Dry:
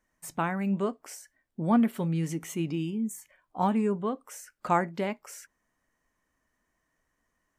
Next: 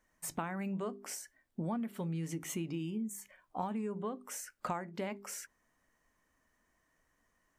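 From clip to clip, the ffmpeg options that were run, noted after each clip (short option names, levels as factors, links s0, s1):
-af "bandreject=f=50:t=h:w=6,bandreject=f=100:t=h:w=6,bandreject=f=150:t=h:w=6,bandreject=f=200:t=h:w=6,bandreject=f=250:t=h:w=6,bandreject=f=300:t=h:w=6,bandreject=f=350:t=h:w=6,bandreject=f=400:t=h:w=6,acompressor=threshold=0.0158:ratio=8,volume=1.19"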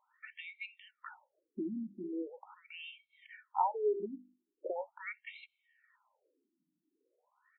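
-af "aecho=1:1:2.2:0.67,afftfilt=real='re*between(b*sr/1024,230*pow(3000/230,0.5+0.5*sin(2*PI*0.41*pts/sr))/1.41,230*pow(3000/230,0.5+0.5*sin(2*PI*0.41*pts/sr))*1.41)':imag='im*between(b*sr/1024,230*pow(3000/230,0.5+0.5*sin(2*PI*0.41*pts/sr))/1.41,230*pow(3000/230,0.5+0.5*sin(2*PI*0.41*pts/sr))*1.41)':win_size=1024:overlap=0.75,volume=2.11"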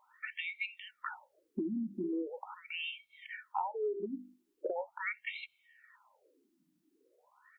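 -af "acompressor=threshold=0.00891:ratio=8,volume=2.66"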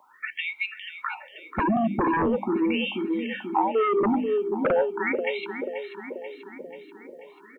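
-filter_complex "[0:a]aecho=1:1:486|972|1458|1944|2430|2916|3402:0.299|0.176|0.104|0.0613|0.0362|0.0213|0.0126,acrossover=split=190|460|1100[s0][s1][s2][s3];[s1]aeval=exprs='0.0376*sin(PI/2*4.47*val(0)/0.0376)':c=same[s4];[s0][s4][s2][s3]amix=inputs=4:normalize=0,volume=2.66"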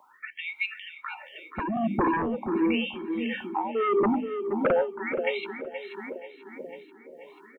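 -af "tremolo=f=1.5:d=0.58,aecho=1:1:473|946|1419:0.2|0.0638|0.0204"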